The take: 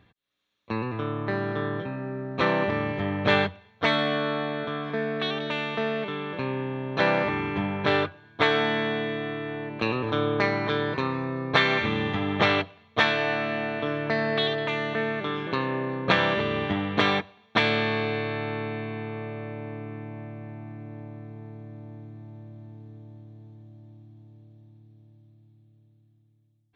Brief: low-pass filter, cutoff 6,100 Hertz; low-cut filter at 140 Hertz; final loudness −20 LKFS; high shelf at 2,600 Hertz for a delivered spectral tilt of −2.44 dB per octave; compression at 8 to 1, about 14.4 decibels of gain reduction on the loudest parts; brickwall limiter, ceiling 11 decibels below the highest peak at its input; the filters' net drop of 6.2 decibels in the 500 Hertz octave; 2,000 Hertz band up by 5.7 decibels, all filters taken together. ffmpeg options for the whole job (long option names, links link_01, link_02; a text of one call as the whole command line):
ffmpeg -i in.wav -af "highpass=140,lowpass=6100,equalizer=frequency=500:width_type=o:gain=-8.5,equalizer=frequency=2000:width_type=o:gain=5,highshelf=frequency=2600:gain=5.5,acompressor=threshold=-28dB:ratio=8,volume=13dB,alimiter=limit=-10.5dB:level=0:latency=1" out.wav